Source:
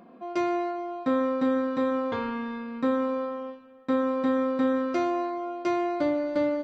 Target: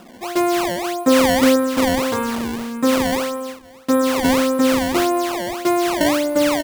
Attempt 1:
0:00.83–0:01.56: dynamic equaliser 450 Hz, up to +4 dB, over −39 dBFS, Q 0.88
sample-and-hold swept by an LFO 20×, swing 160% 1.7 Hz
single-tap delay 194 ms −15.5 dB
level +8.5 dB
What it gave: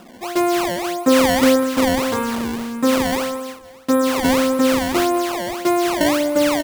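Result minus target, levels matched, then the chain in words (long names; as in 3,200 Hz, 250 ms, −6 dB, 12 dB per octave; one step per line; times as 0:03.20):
echo-to-direct +9 dB
0:00.83–0:01.56: dynamic equaliser 450 Hz, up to +4 dB, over −39 dBFS, Q 0.88
sample-and-hold swept by an LFO 20×, swing 160% 1.7 Hz
single-tap delay 194 ms −24.5 dB
level +8.5 dB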